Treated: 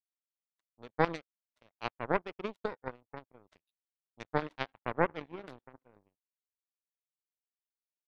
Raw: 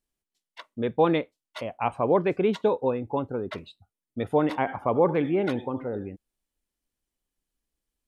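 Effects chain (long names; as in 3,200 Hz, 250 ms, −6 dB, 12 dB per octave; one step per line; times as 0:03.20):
gain on a spectral selection 0:03.54–0:04.46, 1,400–3,900 Hz +8 dB
power curve on the samples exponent 3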